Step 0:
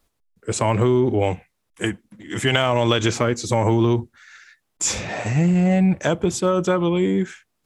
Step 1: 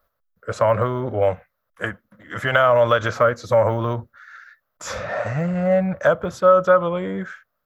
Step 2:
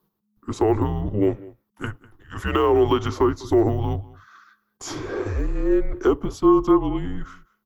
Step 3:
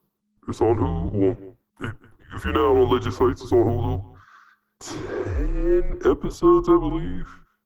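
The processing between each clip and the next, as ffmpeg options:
ffmpeg -i in.wav -af "firequalizer=gain_entry='entry(110,0);entry(360,-8);entry(560,13);entry(810,1);entry(1300,14);entry(2400,-5);entry(4100,-3);entry(6000,-7);entry(8900,-18);entry(13000,8)':delay=0.05:min_phase=1,volume=-4dB" out.wav
ffmpeg -i in.wav -filter_complex "[0:a]equalizer=frequency=1600:width_type=o:width=1.4:gain=-7.5,asplit=2[link_01][link_02];[link_02]adelay=198.3,volume=-21dB,highshelf=frequency=4000:gain=-4.46[link_03];[link_01][link_03]amix=inputs=2:normalize=0,afreqshift=-210" out.wav
ffmpeg -i in.wav -ar 48000 -c:a libopus -b:a 24k out.opus

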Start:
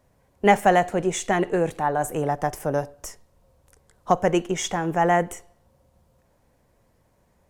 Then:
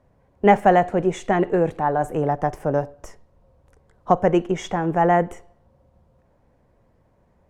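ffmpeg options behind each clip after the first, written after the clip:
ffmpeg -i in.wav -af "lowpass=frequency=1300:poles=1,volume=3.5dB" out.wav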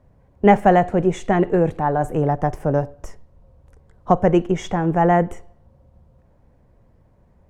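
ffmpeg -i in.wav -af "lowshelf=frequency=200:gain=8.5" out.wav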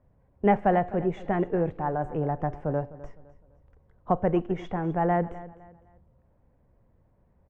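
ffmpeg -i in.wav -af "lowpass=2600,aecho=1:1:255|510|765:0.133|0.044|0.0145,volume=-8.5dB" out.wav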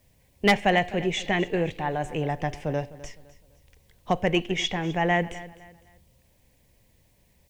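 ffmpeg -i in.wav -af "aexciter=amount=11.5:drive=7.3:freq=2100,aeval=exprs='0.282*(abs(mod(val(0)/0.282+3,4)-2)-1)':channel_layout=same" out.wav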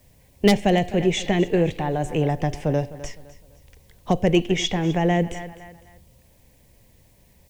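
ffmpeg -i in.wav -filter_complex "[0:a]equalizer=frequency=2600:width=0.66:gain=-2.5,acrossover=split=590|3100[link_01][link_02][link_03];[link_02]acompressor=threshold=-38dB:ratio=6[link_04];[link_01][link_04][link_03]amix=inputs=3:normalize=0,volume=7dB" out.wav

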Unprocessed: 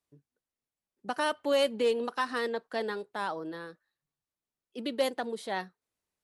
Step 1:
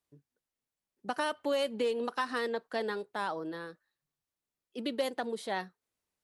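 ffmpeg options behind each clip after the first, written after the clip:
ffmpeg -i in.wav -af "acompressor=threshold=-27dB:ratio=6" out.wav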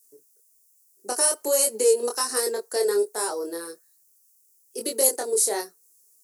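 ffmpeg -i in.wav -af "highpass=frequency=400:width_type=q:width=4.9,flanger=delay=22.5:depth=2.4:speed=1.2,aexciter=amount=15.9:drive=9.1:freq=5400,volume=3.5dB" out.wav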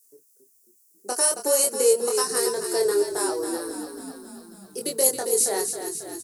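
ffmpeg -i in.wav -filter_complex "[0:a]asplit=9[link_01][link_02][link_03][link_04][link_05][link_06][link_07][link_08][link_09];[link_02]adelay=272,afreqshift=-35,volume=-8dB[link_10];[link_03]adelay=544,afreqshift=-70,volume=-12.2dB[link_11];[link_04]adelay=816,afreqshift=-105,volume=-16.3dB[link_12];[link_05]adelay=1088,afreqshift=-140,volume=-20.5dB[link_13];[link_06]adelay=1360,afreqshift=-175,volume=-24.6dB[link_14];[link_07]adelay=1632,afreqshift=-210,volume=-28.8dB[link_15];[link_08]adelay=1904,afreqshift=-245,volume=-32.9dB[link_16];[link_09]adelay=2176,afreqshift=-280,volume=-37.1dB[link_17];[link_01][link_10][link_11][link_12][link_13][link_14][link_15][link_16][link_17]amix=inputs=9:normalize=0" out.wav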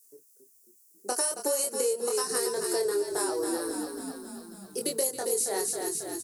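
ffmpeg -i in.wav -af "acompressor=threshold=-25dB:ratio=6" out.wav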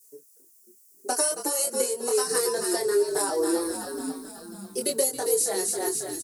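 ffmpeg -i in.wav -filter_complex "[0:a]asplit=2[link_01][link_02];[link_02]adelay=4.9,afreqshift=1[link_03];[link_01][link_03]amix=inputs=2:normalize=1,volume=6.5dB" out.wav

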